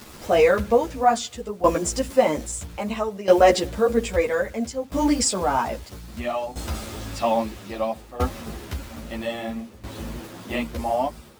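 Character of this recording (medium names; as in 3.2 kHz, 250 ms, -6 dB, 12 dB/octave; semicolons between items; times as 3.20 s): a quantiser's noise floor 8-bit, dither none; tremolo saw down 0.61 Hz, depth 85%; a shimmering, thickened sound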